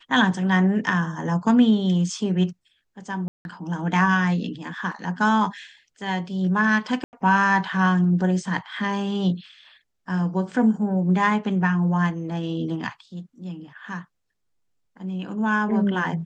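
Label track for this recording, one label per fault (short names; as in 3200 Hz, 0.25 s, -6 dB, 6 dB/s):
3.280000	3.450000	gap 0.171 s
7.040000	7.130000	gap 89 ms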